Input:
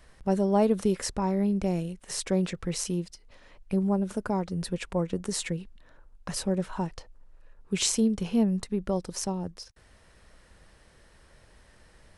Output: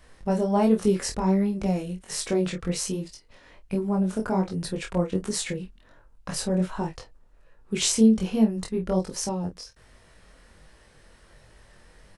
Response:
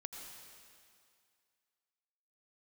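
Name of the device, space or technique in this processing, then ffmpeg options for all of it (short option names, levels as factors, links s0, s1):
double-tracked vocal: -filter_complex "[0:a]asplit=2[s0][s1];[s1]adelay=27,volume=0.422[s2];[s0][s2]amix=inputs=2:normalize=0,flanger=delay=18.5:depth=4.4:speed=1.3,volume=1.78"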